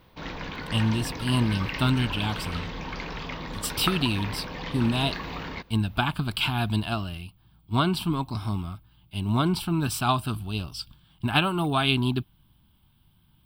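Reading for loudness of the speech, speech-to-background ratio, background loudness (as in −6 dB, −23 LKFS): −27.0 LKFS, 7.5 dB, −34.5 LKFS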